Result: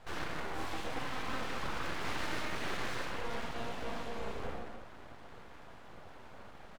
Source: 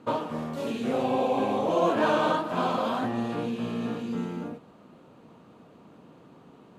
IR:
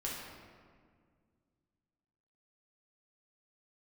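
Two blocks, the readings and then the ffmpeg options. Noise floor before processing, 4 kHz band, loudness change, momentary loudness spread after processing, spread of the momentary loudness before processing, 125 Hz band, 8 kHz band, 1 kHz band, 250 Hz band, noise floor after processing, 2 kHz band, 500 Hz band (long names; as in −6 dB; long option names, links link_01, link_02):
−54 dBFS, −3.5 dB, −12.0 dB, 16 LU, 10 LU, −9.5 dB, +0.5 dB, −12.0 dB, −16.5 dB, −51 dBFS, −3.0 dB, −15.5 dB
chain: -filter_complex "[0:a]alimiter=limit=-20.5dB:level=0:latency=1,asoftclip=type=hard:threshold=-34dB,acompressor=threshold=-38dB:ratio=6,highpass=frequency=360:poles=1,aecho=1:1:132:0.2[link_01];[1:a]atrim=start_sample=2205,afade=type=out:start_time=0.36:duration=0.01,atrim=end_sample=16317[link_02];[link_01][link_02]afir=irnorm=-1:irlink=0,aeval=exprs='abs(val(0))':channel_layout=same,volume=3dB"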